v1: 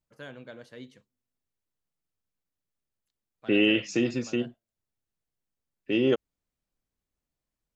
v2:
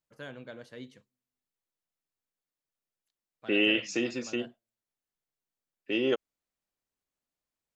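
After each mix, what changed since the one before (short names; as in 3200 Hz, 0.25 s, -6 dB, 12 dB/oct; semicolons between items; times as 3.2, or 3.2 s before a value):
second voice: add HPF 460 Hz 6 dB/oct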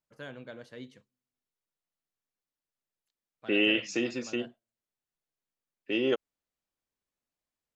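master: add high shelf 8900 Hz -4 dB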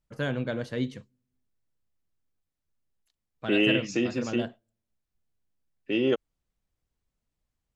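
first voice +11.0 dB; master: add low shelf 220 Hz +11 dB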